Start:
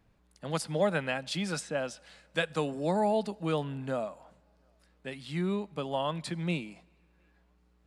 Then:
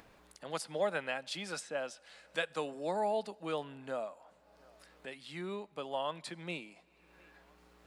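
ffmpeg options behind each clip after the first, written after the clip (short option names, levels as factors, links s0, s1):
-af "bass=f=250:g=-14,treble=f=4000:g=-1,acompressor=mode=upward:threshold=0.00794:ratio=2.5,volume=0.631"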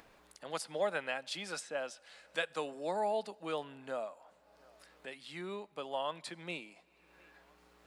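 -af "equalizer=f=91:w=0.42:g=-5.5"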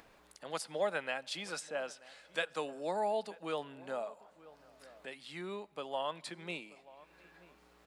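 -filter_complex "[0:a]asplit=2[s0][s1];[s1]adelay=932.9,volume=0.112,highshelf=f=4000:g=-21[s2];[s0][s2]amix=inputs=2:normalize=0"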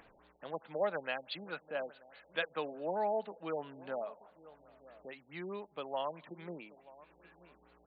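-af "afftfilt=real='re*lt(b*sr/1024,860*pow(4800/860,0.5+0.5*sin(2*PI*4.7*pts/sr)))':imag='im*lt(b*sr/1024,860*pow(4800/860,0.5+0.5*sin(2*PI*4.7*pts/sr)))':win_size=1024:overlap=0.75"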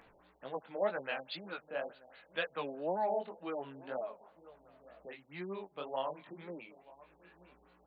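-af "flanger=delay=15:depth=7.7:speed=2,volume=1.33"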